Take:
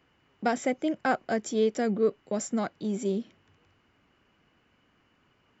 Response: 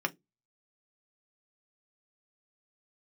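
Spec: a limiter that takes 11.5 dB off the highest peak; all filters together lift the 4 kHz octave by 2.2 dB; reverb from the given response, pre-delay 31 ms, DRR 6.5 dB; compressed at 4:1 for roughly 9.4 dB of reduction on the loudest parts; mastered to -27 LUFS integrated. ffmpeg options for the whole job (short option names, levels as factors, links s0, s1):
-filter_complex "[0:a]equalizer=f=4000:t=o:g=3,acompressor=threshold=0.0282:ratio=4,alimiter=level_in=1.88:limit=0.0631:level=0:latency=1,volume=0.531,asplit=2[s0][s1];[1:a]atrim=start_sample=2205,adelay=31[s2];[s1][s2]afir=irnorm=-1:irlink=0,volume=0.211[s3];[s0][s3]amix=inputs=2:normalize=0,volume=3.76"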